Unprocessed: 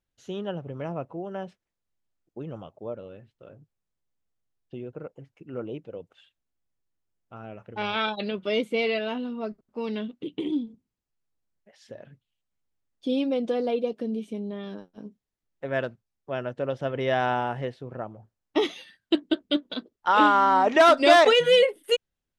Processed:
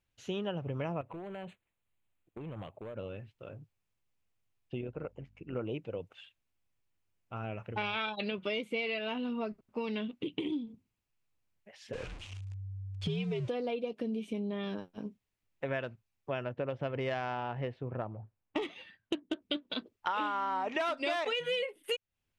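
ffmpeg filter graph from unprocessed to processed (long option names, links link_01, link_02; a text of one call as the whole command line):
ffmpeg -i in.wav -filter_complex "[0:a]asettb=1/sr,asplit=3[link_01][link_02][link_03];[link_01]atrim=end=1.014[link_04];[link_02]atrim=start=1.01:end=2.96,asetpts=PTS-STARTPTS,afade=type=in:duration=0.004:curve=qsin,afade=type=out:start_time=1.946:duration=0.004:curve=qsin,acompressor=threshold=-38dB:ratio=10:attack=3.2:release=140:knee=1:detection=peak,asoftclip=type=hard:threshold=-39dB,asuperstop=centerf=5300:order=4:qfactor=1.9[link_05];[link_03]atrim=start=2.956[link_06];[link_04][link_05]acrossfade=duration=0.004:curve1=hsin:curve2=qsin[link_07];[link_07][link_06]acrossfade=duration=0.004:curve1=qsin:curve2=hsin,asettb=1/sr,asplit=3[link_08][link_09][link_10];[link_08]atrim=end=4.814[link_11];[link_09]atrim=start=4.81:end=5.56,asetpts=PTS-STARTPTS,afade=type=in:duration=0.004:curve=qsin,afade=type=out:start_time=0.746:duration=0.004:curve=qsin,highshelf=frequency=9000:gain=-9,tremolo=f=88:d=0.571,aeval=exprs='val(0)+0.000447*(sin(2*PI*50*n/s)+sin(2*PI*2*50*n/s)/2+sin(2*PI*3*50*n/s)/3+sin(2*PI*4*50*n/s)/4+sin(2*PI*5*50*n/s)/5)':channel_layout=same[link_12];[link_10]atrim=start=5.556[link_13];[link_11][link_12]acrossfade=duration=0.004:curve1=hsin:curve2=qsin[link_14];[link_14][link_13]acrossfade=duration=0.004:curve1=qsin:curve2=hsin,asettb=1/sr,asplit=3[link_15][link_16][link_17];[link_15]atrim=end=11.934[link_18];[link_16]atrim=start=11.93:end=13.48,asetpts=PTS-STARTPTS,afade=type=in:duration=0.004:curve=qsin,afade=type=out:start_time=1.546:duration=0.004:curve=qsin,aeval=exprs='val(0)+0.5*0.00794*sgn(val(0))':channel_layout=same,lowpass=frequency=8300:width=0.5412,lowpass=frequency=8300:width=1.3066,afreqshift=-97[link_19];[link_17]atrim=start=13.476[link_20];[link_18][link_19]acrossfade=duration=0.004:curve1=hsin:curve2=qsin[link_21];[link_21][link_20]acrossfade=duration=0.004:curve1=qsin:curve2=hsin,asettb=1/sr,asplit=3[link_22][link_23][link_24];[link_22]atrim=end=16.444[link_25];[link_23]atrim=start=16.44:end=19.42,asetpts=PTS-STARTPTS,afade=type=in:duration=0.004:curve=qsin,afade=type=out:start_time=2.976:duration=0.004:curve=qsin,adynamicsmooth=sensitivity=0.5:basefreq=1600,aemphasis=mode=production:type=75fm[link_26];[link_24]atrim=start=19.416[link_27];[link_25][link_26]acrossfade=duration=0.004:curve1=hsin:curve2=qsin[link_28];[link_28][link_27]acrossfade=duration=0.004:curve1=qsin:curve2=hsin,equalizer=frequency=100:width_type=o:width=0.67:gain=7,equalizer=frequency=1000:width_type=o:width=0.67:gain=3,equalizer=frequency=2500:width_type=o:width=0.67:gain=8,acompressor=threshold=-32dB:ratio=6" out.wav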